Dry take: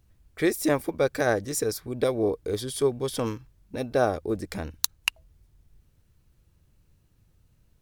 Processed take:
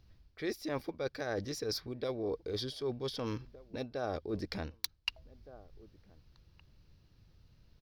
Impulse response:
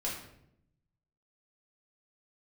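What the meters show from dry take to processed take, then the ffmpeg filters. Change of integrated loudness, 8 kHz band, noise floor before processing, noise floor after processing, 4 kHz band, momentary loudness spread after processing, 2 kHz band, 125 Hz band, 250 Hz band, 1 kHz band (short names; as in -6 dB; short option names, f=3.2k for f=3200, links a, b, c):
-11.0 dB, -16.0 dB, -65 dBFS, -67 dBFS, -6.0 dB, 9 LU, -11.5 dB, -8.5 dB, -10.5 dB, -12.0 dB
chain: -filter_complex "[0:a]highshelf=f=6.3k:t=q:w=3:g=-9.5,asplit=2[a][b];[b]adelay=1516,volume=-30dB,highshelf=f=4k:g=-34.1[c];[a][c]amix=inputs=2:normalize=0,aeval=exprs='(mod(1.5*val(0)+1,2)-1)/1.5':c=same,areverse,acompressor=threshold=-34dB:ratio=6,areverse"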